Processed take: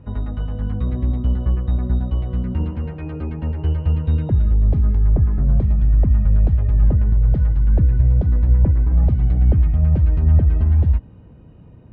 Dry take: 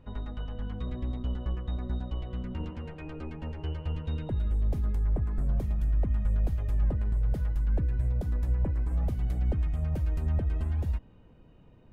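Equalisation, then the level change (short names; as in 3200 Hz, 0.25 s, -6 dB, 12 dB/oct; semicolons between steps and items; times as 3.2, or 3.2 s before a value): HPF 72 Hz; air absorption 290 m; low shelf 160 Hz +11.5 dB; +8.0 dB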